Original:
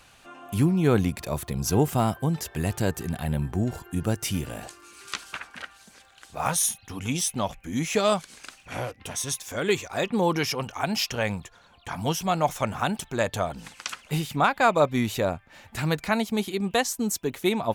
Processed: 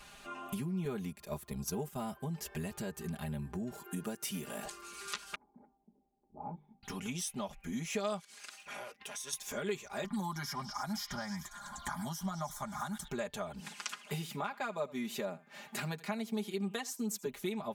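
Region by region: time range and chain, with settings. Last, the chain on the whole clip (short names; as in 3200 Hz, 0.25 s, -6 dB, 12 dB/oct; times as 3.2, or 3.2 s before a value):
0.85–2.13 gate -29 dBFS, range -9 dB + high shelf 9500 Hz +6 dB
3.72–4.65 HPF 180 Hz + high shelf 9800 Hz +6.5 dB
5.35–6.83 low-pass opened by the level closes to 460 Hz, open at -25.5 dBFS + vocal tract filter u + notches 50/100/150/200/250/300/350/400 Hz
8.2–9.33 HPF 760 Hz 6 dB/oct + compressor 3:1, threshold -43 dBFS + expander -57 dBFS
10.04–13.08 fixed phaser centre 1100 Hz, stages 4 + delay with a stepping band-pass 0.101 s, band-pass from 2500 Hz, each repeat 0.7 oct, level -5 dB + three-band squash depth 70%
13.6–17.26 HPF 150 Hz 24 dB/oct + echo 80 ms -21.5 dB
whole clip: compressor 4:1, threshold -38 dBFS; comb 4.9 ms, depth 95%; gain -2.5 dB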